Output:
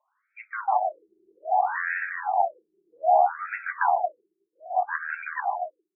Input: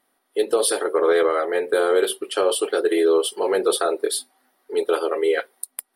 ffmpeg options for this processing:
ffmpeg -i in.wav -af "aecho=1:1:150|375|712.5|1219|1978:0.631|0.398|0.251|0.158|0.1,afreqshift=310,afftfilt=real='re*between(b*sr/1024,280*pow(1900/280,0.5+0.5*sin(2*PI*0.63*pts/sr))/1.41,280*pow(1900/280,0.5+0.5*sin(2*PI*0.63*pts/sr))*1.41)':imag='im*between(b*sr/1024,280*pow(1900/280,0.5+0.5*sin(2*PI*0.63*pts/sr))/1.41,280*pow(1900/280,0.5+0.5*sin(2*PI*0.63*pts/sr))*1.41)':win_size=1024:overlap=0.75,volume=-1dB" out.wav

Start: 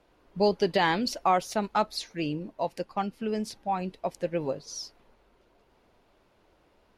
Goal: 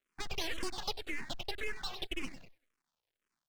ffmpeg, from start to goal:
ffmpeg -i in.wav -filter_complex "[0:a]highpass=frequency=190:width_type=q:width=0.5412,highpass=frequency=190:width_type=q:width=1.307,lowpass=frequency=2300:width_type=q:width=0.5176,lowpass=frequency=2300:width_type=q:width=0.7071,lowpass=frequency=2300:width_type=q:width=1.932,afreqshift=210,acrusher=bits=7:dc=4:mix=0:aa=0.000001,asplit=5[link_01][link_02][link_03][link_04][link_05];[link_02]adelay=191,afreqshift=-46,volume=-11.5dB[link_06];[link_03]adelay=382,afreqshift=-92,volume=-18.8dB[link_07];[link_04]adelay=573,afreqshift=-138,volume=-26.2dB[link_08];[link_05]adelay=764,afreqshift=-184,volume=-33.5dB[link_09];[link_01][link_06][link_07][link_08][link_09]amix=inputs=5:normalize=0,acompressor=threshold=-34dB:ratio=2,afwtdn=0.0112,asetrate=88200,aresample=44100,aeval=exprs='abs(val(0))':channel_layout=same,asplit=2[link_10][link_11];[link_11]afreqshift=-1.9[link_12];[link_10][link_12]amix=inputs=2:normalize=1,volume=1.5dB" out.wav

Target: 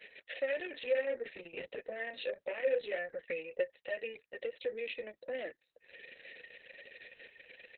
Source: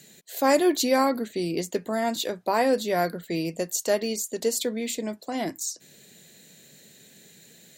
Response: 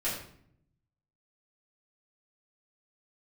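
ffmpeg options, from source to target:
-filter_complex "[0:a]highpass=frequency=150:poles=1,asettb=1/sr,asplit=3[link_01][link_02][link_03];[link_01]atrim=end=0.704[link_04];[link_02]atrim=start=0.7:end=3.04,asetpts=PTS-STARTPTS,afade=type=in:duration=0.004:curve=qsin,afade=type=out:start_time=2.336:duration=0.004:curve=qsin,asplit=2[link_05][link_06];[link_06]adelay=29,volume=-5.5dB[link_07];[link_05][link_07]amix=inputs=2:normalize=0,atrim=end_sample=103194[link_08];[link_03]atrim=start=3.036[link_09];[link_04][link_08]acrossfade=duration=0.004:curve1=hsin:curve2=qsin[link_10];[link_10][link_09]acrossfade=duration=0.004:curve1=qsin:curve2=hsin,asoftclip=type=tanh:threshold=-21dB,acompressor=threshold=-39dB:ratio=5,asplit=3[link_11][link_12][link_13];[link_11]bandpass=frequency=530:width_type=q:width=8,volume=0dB[link_14];[link_12]bandpass=frequency=1840:width_type=q:width=8,volume=-6dB[link_15];[link_13]bandpass=frequency=2480:width_type=q:width=8,volume=-9dB[link_16];[link_14][link_15][link_16]amix=inputs=3:normalize=0,equalizer=frequency=2400:width_type=o:width=1.7:gain=12.5,anlmdn=0.0000158,aresample=11025,aresample=44100,aemphasis=mode=reproduction:type=50kf,volume=10.5dB" -ar 48000 -c:a libopus -b:a 6k

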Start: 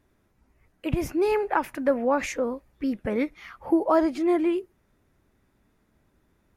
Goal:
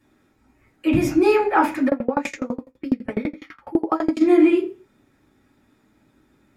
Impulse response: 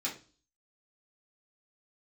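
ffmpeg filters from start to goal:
-filter_complex "[1:a]atrim=start_sample=2205,afade=type=out:start_time=0.31:duration=0.01,atrim=end_sample=14112[link_01];[0:a][link_01]afir=irnorm=-1:irlink=0,asplit=3[link_02][link_03][link_04];[link_02]afade=type=out:start_time=1.88:duration=0.02[link_05];[link_03]aeval=exprs='val(0)*pow(10,-28*if(lt(mod(12*n/s,1),2*abs(12)/1000),1-mod(12*n/s,1)/(2*abs(12)/1000),(mod(12*n/s,1)-2*abs(12)/1000)/(1-2*abs(12)/1000))/20)':channel_layout=same,afade=type=in:start_time=1.88:duration=0.02,afade=type=out:start_time=4.2:duration=0.02[link_06];[link_04]afade=type=in:start_time=4.2:duration=0.02[link_07];[link_05][link_06][link_07]amix=inputs=3:normalize=0,volume=4dB"

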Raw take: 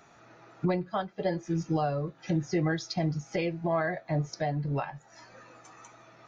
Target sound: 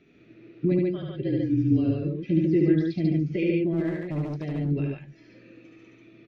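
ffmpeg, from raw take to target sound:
ffmpeg -i in.wav -filter_complex "[0:a]acrossover=split=4800[link_01][link_02];[link_02]acompressor=threshold=-57dB:ratio=4:attack=1:release=60[link_03];[link_01][link_03]amix=inputs=2:normalize=0,firequalizer=gain_entry='entry(120,0);entry(330,8);entry(820,-25);entry(2400,1);entry(8000,-29)':delay=0.05:min_phase=1,asettb=1/sr,asplit=3[link_04][link_05][link_06];[link_04]atrim=end=0.884[link_07];[link_05]atrim=start=0.88:end=1.9,asetpts=PTS-STARTPTS,afade=type=in:duration=0.004:curve=qsin,afade=type=out:start_time=1.016:duration=0.004:curve=qsin,afreqshift=-38[link_08];[link_06]atrim=start=1.896[link_09];[link_07][link_08]acrossfade=duration=0.004:curve1=hsin:curve2=qsin[link_10];[link_10][link_09]acrossfade=duration=0.004:curve1=qsin:curve2=hsin,asplit=3[link_11][link_12][link_13];[link_11]afade=type=out:start_time=3.72:duration=0.02[link_14];[link_12]asoftclip=type=hard:threshold=-27dB,afade=type=in:start_time=3.72:duration=0.02,afade=type=out:start_time=4.55:duration=0.02[link_15];[link_13]afade=type=in:start_time=4.55:duration=0.02[link_16];[link_14][link_15][link_16]amix=inputs=3:normalize=0,asplit=2[link_17][link_18];[link_18]aecho=0:1:72.89|142.9:0.708|0.794[link_19];[link_17][link_19]amix=inputs=2:normalize=0" out.wav

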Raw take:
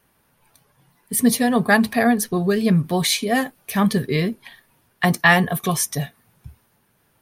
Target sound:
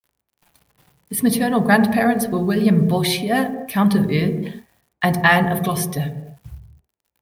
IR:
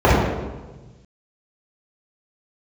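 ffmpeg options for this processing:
-filter_complex "[0:a]equalizer=frequency=6900:width=2.3:gain=-12.5,acrusher=bits=8:mix=0:aa=0.000001,asplit=2[link_01][link_02];[1:a]atrim=start_sample=2205,afade=type=out:start_time=0.37:duration=0.01,atrim=end_sample=16758[link_03];[link_02][link_03]afir=irnorm=-1:irlink=0,volume=-36.5dB[link_04];[link_01][link_04]amix=inputs=2:normalize=0"

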